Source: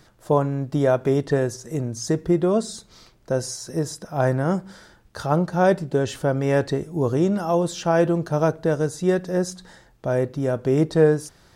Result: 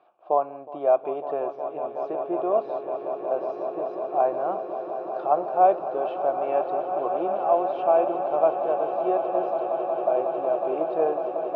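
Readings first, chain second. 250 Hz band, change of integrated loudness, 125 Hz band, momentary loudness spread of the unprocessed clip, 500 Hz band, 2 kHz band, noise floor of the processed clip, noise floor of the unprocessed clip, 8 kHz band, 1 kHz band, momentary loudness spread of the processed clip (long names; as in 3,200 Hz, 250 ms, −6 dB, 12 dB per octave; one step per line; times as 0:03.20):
−12.0 dB, −3.0 dB, below −25 dB, 9 LU, −1.0 dB, −12.5 dB, −39 dBFS, −55 dBFS, below −40 dB, +5.0 dB, 9 LU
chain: formant filter a
loudspeaker in its box 210–3,400 Hz, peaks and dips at 360 Hz +8 dB, 590 Hz +4 dB, 910 Hz +8 dB
echo that builds up and dies away 183 ms, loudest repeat 8, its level −13 dB
level +3.5 dB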